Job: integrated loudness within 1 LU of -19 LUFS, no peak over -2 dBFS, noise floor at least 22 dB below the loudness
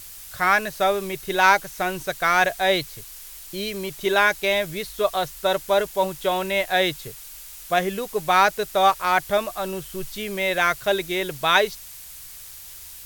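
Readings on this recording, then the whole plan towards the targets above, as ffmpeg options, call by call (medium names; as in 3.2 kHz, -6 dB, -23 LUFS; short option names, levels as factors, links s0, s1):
noise floor -41 dBFS; noise floor target -44 dBFS; loudness -22.0 LUFS; peak level -2.5 dBFS; loudness target -19.0 LUFS
-> -af "afftdn=nr=6:nf=-41"
-af "volume=1.41,alimiter=limit=0.794:level=0:latency=1"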